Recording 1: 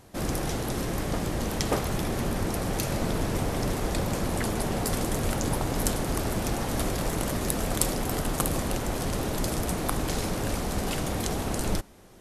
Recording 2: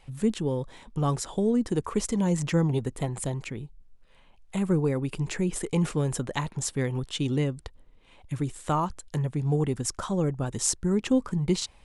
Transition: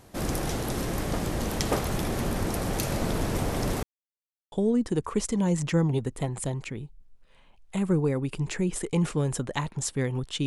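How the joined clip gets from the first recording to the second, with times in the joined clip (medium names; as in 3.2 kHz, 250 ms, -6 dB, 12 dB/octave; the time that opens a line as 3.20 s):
recording 1
3.83–4.52 s: mute
4.52 s: go over to recording 2 from 1.32 s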